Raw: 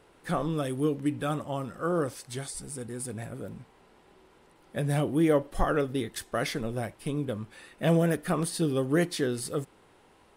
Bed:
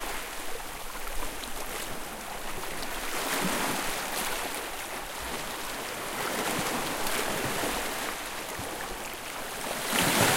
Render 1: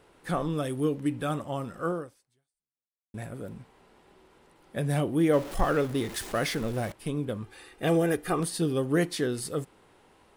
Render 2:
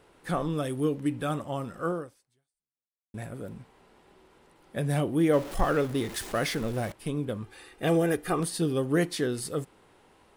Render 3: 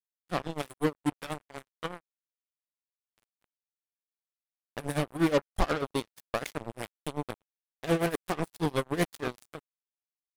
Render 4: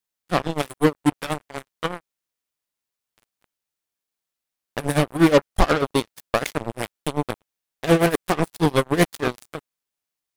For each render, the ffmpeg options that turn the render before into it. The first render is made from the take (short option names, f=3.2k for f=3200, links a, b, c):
-filter_complex "[0:a]asettb=1/sr,asplit=3[a][b][c];[a]atrim=end=5.334[d];[b]atrim=start=5.33:end=6.92,asetpts=PTS-STARTPTS,afade=t=in:d=0.004:c=qsin,afade=t=out:st=1.586:d=0.004:c=qsin,aeval=exprs='val(0)+0.5*0.0158*sgn(val(0))':c=same[e];[c]atrim=start=6.916[f];[d][e]acrossfade=d=0.004:c1=hsin:c2=qsin[g];[g][f]acrossfade=d=0.004:c1=qsin:c2=hsin,asettb=1/sr,asplit=3[h][i][j];[h]atrim=end=7.424[k];[i]atrim=start=7.42:end=8.4,asetpts=PTS-STARTPTS,afade=t=in:d=0.004:c=qsin,afade=t=out:st=0.976:d=0.004:c=qsin,aecho=1:1:2.5:0.58,atrim=end_sample=43218[l];[j]atrim=start=8.396[m];[k][l]acrossfade=d=0.004:c1=hsin:c2=qsin[n];[n][m]acrossfade=d=0.004:c1=qsin:c2=hsin,asplit=2[o][p];[o]atrim=end=3.14,asetpts=PTS-STARTPTS,afade=t=out:st=1.89:d=1.25:c=exp[q];[p]atrim=start=3.14,asetpts=PTS-STARTPTS,afade=t=in:d=0.004:c=hsin[r];[q][r]concat=n=2:v=0:a=1"
-af anull
-af "acrusher=bits=3:mix=0:aa=0.5,tremolo=f=8.2:d=0.86"
-af "volume=10dB,alimiter=limit=-2dB:level=0:latency=1"